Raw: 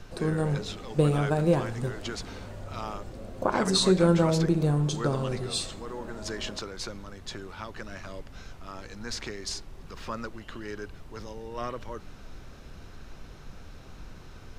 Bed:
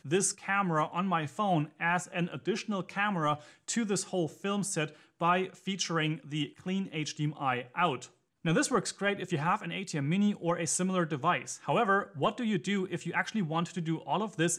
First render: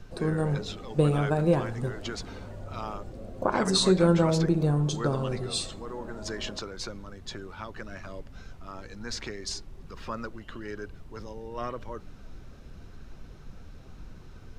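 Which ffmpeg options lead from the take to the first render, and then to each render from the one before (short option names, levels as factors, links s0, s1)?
-af "afftdn=nr=6:nf=-47"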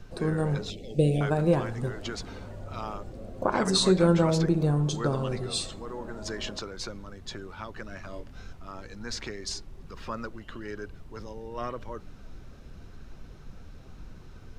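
-filter_complex "[0:a]asettb=1/sr,asplit=3[s0][s1][s2];[s0]atrim=end=0.704[s3];[s1]atrim=start=0.7:end=1.21,asetpts=PTS-STARTPTS,afade=t=in:d=0.004:c=qsin,afade=t=out:st=0.506:d=0.004:c=qsin,asuperstop=centerf=1200:order=8:qfactor=0.83[s4];[s2]atrim=start=1.206[s5];[s3][s4]acrossfade=d=0.004:c1=hsin:c2=qsin[s6];[s6][s5]acrossfade=d=0.004:c1=qsin:c2=hsin,asettb=1/sr,asplit=3[s7][s8][s9];[s7]atrim=end=8.104[s10];[s8]atrim=start=8.1:end=8.53,asetpts=PTS-STARTPTS,afade=t=in:d=0.004:c=qsin,afade=t=out:st=0.426:d=0.004:c=qsin,asplit=2[s11][s12];[s12]adelay=24,volume=0.562[s13];[s11][s13]amix=inputs=2:normalize=0,atrim=end_sample=18963[s14];[s9]atrim=start=8.526[s15];[s10][s14]acrossfade=d=0.004:c1=hsin:c2=qsin[s16];[s16][s15]acrossfade=d=0.004:c1=qsin:c2=hsin"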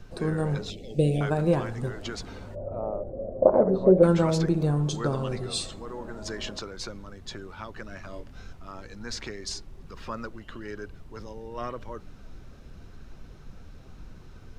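-filter_complex "[0:a]asplit=3[s0][s1][s2];[s0]afade=t=out:st=2.54:d=0.02[s3];[s1]lowpass=f=580:t=q:w=5.1,afade=t=in:st=2.54:d=0.02,afade=t=out:st=4.02:d=0.02[s4];[s2]afade=t=in:st=4.02:d=0.02[s5];[s3][s4][s5]amix=inputs=3:normalize=0"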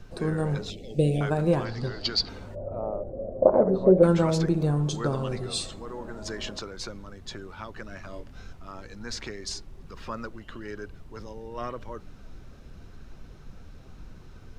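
-filter_complex "[0:a]asettb=1/sr,asplit=3[s0][s1][s2];[s0]atrim=end=1.654[s3];[s1]atrim=start=1.65:end=2.29,asetpts=PTS-STARTPTS,afade=t=in:d=0.004:c=qsin,afade=t=out:st=0.636:d=0.004:c=qsin,lowpass=f=4600:t=q:w=13[s4];[s2]atrim=start=2.286[s5];[s3][s4]acrossfade=d=0.004:c1=hsin:c2=qsin[s6];[s6][s5]acrossfade=d=0.004:c1=qsin:c2=hsin"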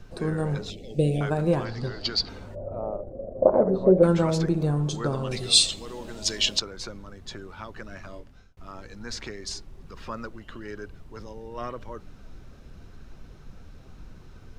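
-filter_complex "[0:a]asettb=1/sr,asplit=3[s0][s1][s2];[s0]atrim=end=2.964[s3];[s1]atrim=start=2.96:end=3.37,asetpts=PTS-STARTPTS,afade=t=in:d=0.004:c=qsin,afade=t=out:st=0.406:d=0.004:c=qsin,tremolo=f=25:d=0.462[s4];[s2]atrim=start=3.366[s5];[s3][s4]acrossfade=d=0.004:c1=hsin:c2=qsin[s6];[s6][s5]acrossfade=d=0.004:c1=qsin:c2=hsin,asettb=1/sr,asplit=3[s7][s8][s9];[s7]atrim=end=5.314[s10];[s8]atrim=start=5.31:end=6.6,asetpts=PTS-STARTPTS,afade=t=in:d=0.004:c=qsin,afade=t=out:st=1.286:d=0.004:c=qsin,highshelf=f=2100:t=q:w=1.5:g=12[s11];[s9]atrim=start=6.596[s12];[s10][s11]acrossfade=d=0.004:c1=hsin:c2=qsin[s13];[s13][s12]acrossfade=d=0.004:c1=qsin:c2=hsin,asplit=2[s14][s15];[s14]atrim=end=8.57,asetpts=PTS-STARTPTS,afade=t=out:st=8.05:d=0.52[s16];[s15]atrim=start=8.57,asetpts=PTS-STARTPTS,afade=t=in:d=0.004:c=hsin[s17];[s16][s17]concat=n=2:v=0:a=1"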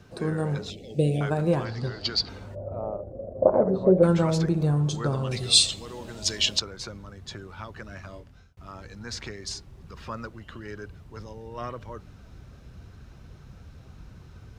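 -af "highpass=80,asubboost=boost=2.5:cutoff=140"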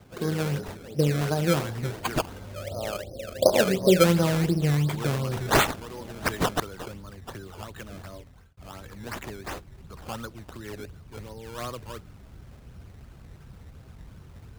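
-filter_complex "[0:a]acrossover=split=230|940|4600[s0][s1][s2][s3];[s2]asoftclip=type=hard:threshold=0.0944[s4];[s0][s1][s4][s3]amix=inputs=4:normalize=0,acrusher=samples=16:mix=1:aa=0.000001:lfo=1:lforange=16:lforate=2.8"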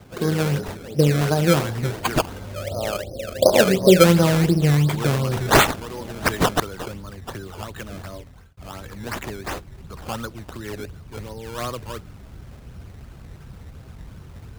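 -af "volume=2,alimiter=limit=0.794:level=0:latency=1"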